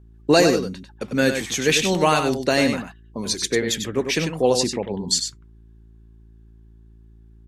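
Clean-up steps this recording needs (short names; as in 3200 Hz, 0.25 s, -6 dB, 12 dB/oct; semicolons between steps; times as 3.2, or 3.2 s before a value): de-hum 55.5 Hz, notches 7; inverse comb 97 ms -7 dB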